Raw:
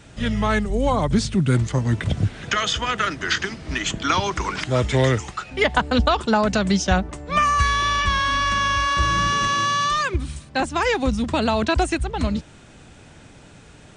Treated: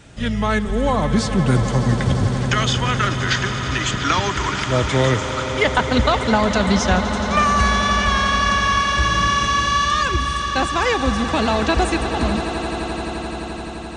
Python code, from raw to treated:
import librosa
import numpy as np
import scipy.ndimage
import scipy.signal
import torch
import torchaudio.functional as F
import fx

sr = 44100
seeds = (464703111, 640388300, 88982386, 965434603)

y = fx.echo_swell(x, sr, ms=86, loudest=8, wet_db=-14.5)
y = y * librosa.db_to_amplitude(1.0)